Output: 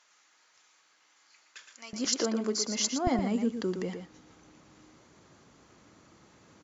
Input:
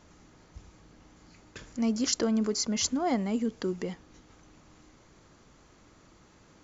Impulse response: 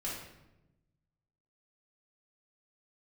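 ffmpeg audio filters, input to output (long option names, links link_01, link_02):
-filter_complex "[0:a]asetnsamples=nb_out_samples=441:pad=0,asendcmd='1.93 highpass f 270;3.07 highpass f 94',highpass=1400,asplit=2[link_01][link_02];[link_02]adelay=116.6,volume=-7dB,highshelf=frequency=4000:gain=-2.62[link_03];[link_01][link_03]amix=inputs=2:normalize=0" -ar 22050 -c:a libmp3lame -b:a 64k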